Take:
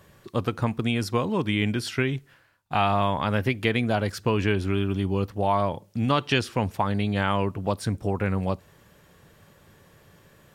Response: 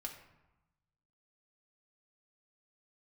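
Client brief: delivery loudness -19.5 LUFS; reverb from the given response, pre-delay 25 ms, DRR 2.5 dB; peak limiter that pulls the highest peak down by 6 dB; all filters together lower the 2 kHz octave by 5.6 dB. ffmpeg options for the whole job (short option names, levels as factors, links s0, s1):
-filter_complex "[0:a]equalizer=f=2000:t=o:g=-7.5,alimiter=limit=0.15:level=0:latency=1,asplit=2[s0][s1];[1:a]atrim=start_sample=2205,adelay=25[s2];[s1][s2]afir=irnorm=-1:irlink=0,volume=1[s3];[s0][s3]amix=inputs=2:normalize=0,volume=2.24"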